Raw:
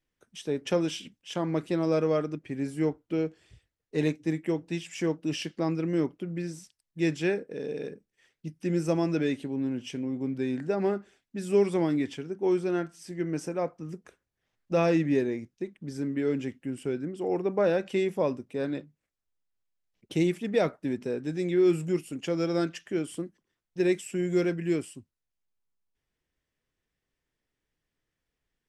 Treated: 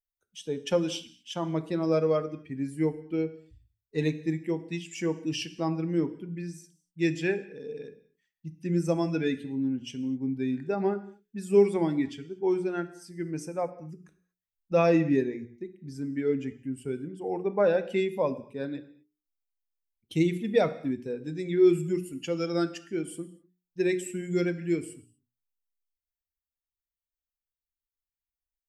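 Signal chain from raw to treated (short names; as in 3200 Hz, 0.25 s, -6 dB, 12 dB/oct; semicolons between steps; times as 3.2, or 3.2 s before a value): per-bin expansion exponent 1.5; notches 60/120/180/240/300/360/420 Hz; non-linear reverb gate 0.27 s falling, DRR 12 dB; gain +3.5 dB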